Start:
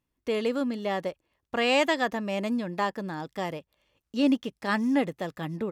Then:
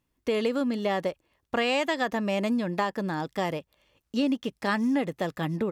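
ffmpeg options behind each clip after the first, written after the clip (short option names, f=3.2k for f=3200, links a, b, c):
-af "acompressor=threshold=-27dB:ratio=6,volume=4.5dB"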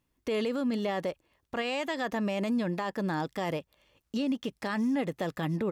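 -af "alimiter=limit=-23dB:level=0:latency=1:release=35"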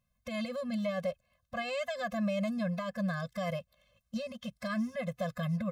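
-af "afftfilt=real='re*eq(mod(floor(b*sr/1024/250),2),0)':imag='im*eq(mod(floor(b*sr/1024/250),2),0)':win_size=1024:overlap=0.75"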